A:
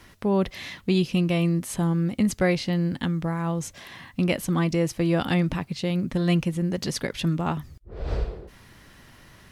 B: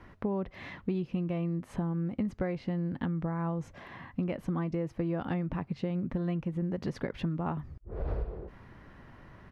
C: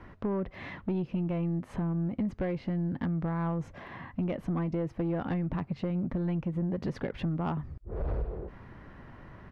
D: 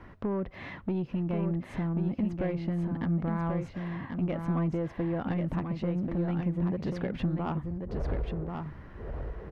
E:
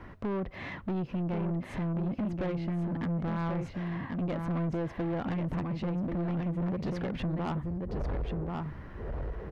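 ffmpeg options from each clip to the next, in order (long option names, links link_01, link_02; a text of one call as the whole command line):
ffmpeg -i in.wav -af "firequalizer=gain_entry='entry(1000,0);entry(3500,-15);entry(8400,-25)':delay=0.05:min_phase=1,acompressor=threshold=-29dB:ratio=6" out.wav
ffmpeg -i in.wav -af "highshelf=frequency=4000:gain=-9,asoftclip=type=tanh:threshold=-27.5dB,volume=3.5dB" out.wav
ffmpeg -i in.wav -af "aecho=1:1:1086:0.531" out.wav
ffmpeg -i in.wav -af "asoftclip=type=tanh:threshold=-30.5dB,volume=2.5dB" out.wav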